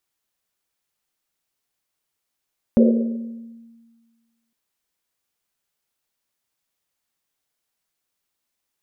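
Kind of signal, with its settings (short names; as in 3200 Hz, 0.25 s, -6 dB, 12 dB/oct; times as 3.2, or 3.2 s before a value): Risset drum length 1.76 s, pitch 230 Hz, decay 1.62 s, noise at 480 Hz, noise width 190 Hz, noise 30%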